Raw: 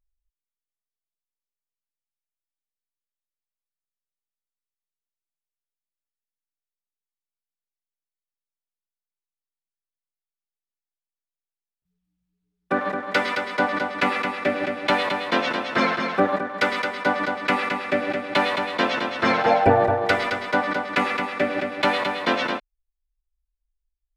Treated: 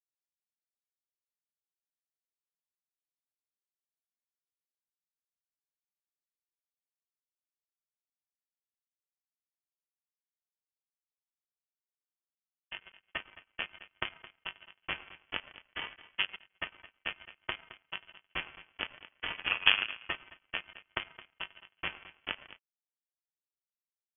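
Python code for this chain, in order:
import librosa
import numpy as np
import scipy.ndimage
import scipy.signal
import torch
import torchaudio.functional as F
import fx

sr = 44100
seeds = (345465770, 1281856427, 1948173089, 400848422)

y = fx.env_lowpass(x, sr, base_hz=340.0, full_db=-18.0)
y = fx.power_curve(y, sr, exponent=3.0)
y = fx.freq_invert(y, sr, carrier_hz=3300)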